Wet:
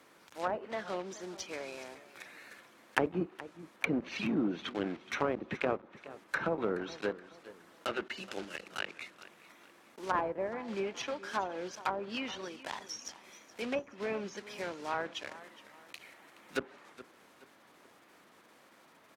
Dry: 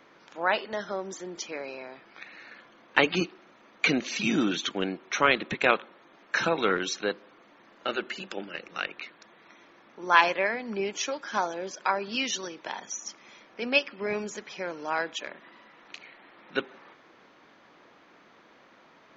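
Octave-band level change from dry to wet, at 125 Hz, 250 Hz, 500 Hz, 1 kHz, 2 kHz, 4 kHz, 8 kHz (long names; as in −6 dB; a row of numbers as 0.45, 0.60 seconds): −4.0 dB, −5.0 dB, −5.5 dB, −8.5 dB, −11.0 dB, −11.0 dB, can't be measured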